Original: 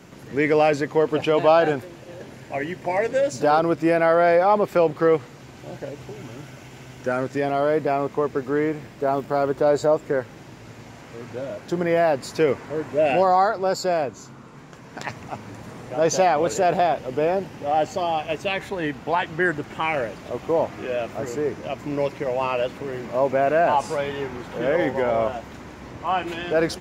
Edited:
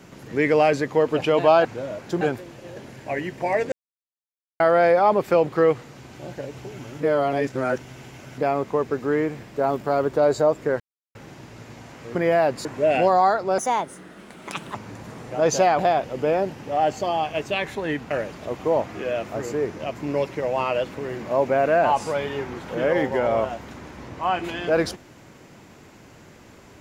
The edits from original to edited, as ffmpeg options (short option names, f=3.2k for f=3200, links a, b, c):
-filter_complex "[0:a]asplit=14[a][b][c][d][e][f][g][h][i][j][k][l][m][n];[a]atrim=end=1.652[o];[b]atrim=start=11.238:end=11.802[p];[c]atrim=start=1.648:end=3.16,asetpts=PTS-STARTPTS,afade=t=out:st=1.508:d=0.004:c=hsin[q];[d]atrim=start=3.16:end=4.04,asetpts=PTS-STARTPTS,volume=0[r];[e]atrim=start=4.04:end=6.442,asetpts=PTS-STARTPTS,afade=t=in:d=0.004:c=hsin[s];[f]atrim=start=6.438:end=7.822,asetpts=PTS-STARTPTS,areverse[t];[g]atrim=start=7.818:end=10.24,asetpts=PTS-STARTPTS,afade=t=out:st=2.418:d=0.004:c=hsin,apad=pad_dur=0.35[u];[h]atrim=start=10.24:end=11.242,asetpts=PTS-STARTPTS,afade=t=in:d=0.004:c=hsin[v];[i]atrim=start=11.798:end=12.302[w];[j]atrim=start=12.798:end=13.734[x];[k]atrim=start=13.73:end=15.34,asetpts=PTS-STARTPTS,asetrate=60858,aresample=44100,atrim=end_sample=51450,asetpts=PTS-STARTPTS[y];[l]atrim=start=15.336:end=16.382[z];[m]atrim=start=16.728:end=19.052[aa];[n]atrim=start=19.938[ab];[o][p]acrossfade=d=0.004:c1=hsin:c2=hsin[ac];[q][r][s]concat=n=3:v=0:a=1[ad];[ac][ad]acrossfade=d=0.004:c1=hsin:c2=hsin[ae];[ae][t]acrossfade=d=0.004:c1=hsin:c2=hsin[af];[u][v]concat=n=2:v=0:a=1[ag];[af][ag]acrossfade=d=0.004:c1=hsin:c2=hsin[ah];[ah][w]acrossfade=d=0.004:c1=hsin:c2=hsin[ai];[ai][x]acrossfade=d=0.004:c1=hsin:c2=hsin[aj];[aj][y]acrossfade=d=0.004:c1=hsin:c2=hsin[ak];[ak][z]acrossfade=d=0.004:c1=hsin:c2=hsin[al];[al][aa]acrossfade=d=0.004:c1=hsin:c2=hsin[am];[am][ab]acrossfade=d=0.004:c1=hsin:c2=hsin"